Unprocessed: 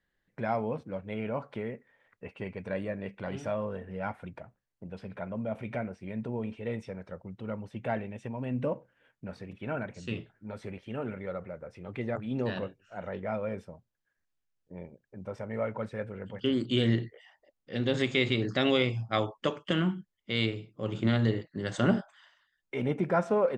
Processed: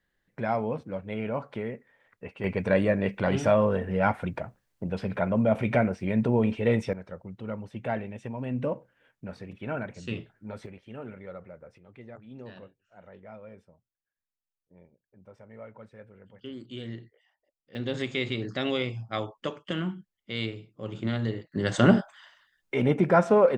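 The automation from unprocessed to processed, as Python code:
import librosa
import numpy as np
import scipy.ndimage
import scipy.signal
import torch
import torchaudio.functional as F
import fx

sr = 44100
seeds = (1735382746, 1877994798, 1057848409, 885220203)

y = fx.gain(x, sr, db=fx.steps((0.0, 2.5), (2.44, 11.0), (6.93, 1.5), (10.66, -5.0), (11.78, -12.5), (17.75, -3.0), (21.52, 6.5)))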